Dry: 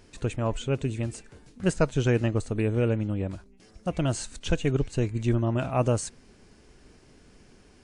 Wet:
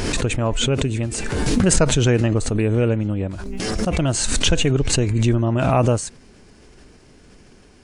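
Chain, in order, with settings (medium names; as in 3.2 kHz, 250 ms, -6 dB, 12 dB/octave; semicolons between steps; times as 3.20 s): swell ahead of each attack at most 24 dB/s; trim +5.5 dB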